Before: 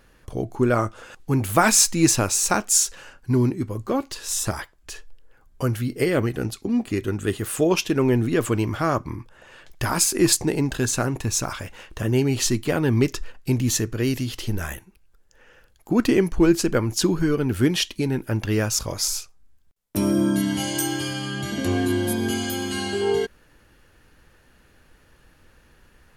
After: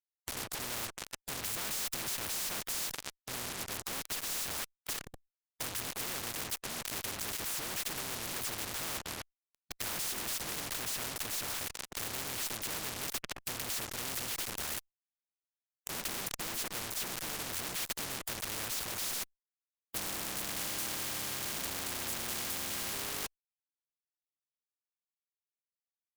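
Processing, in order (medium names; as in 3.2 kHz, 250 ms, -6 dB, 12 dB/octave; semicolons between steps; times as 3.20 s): in parallel at -1.5 dB: level held to a coarse grid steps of 13 dB; on the sum: harmony voices -7 st -7 dB, -5 st -8 dB, +3 st -14 dB; fuzz box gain 37 dB, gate -31 dBFS; spectrum-flattening compressor 4:1; trim -8.5 dB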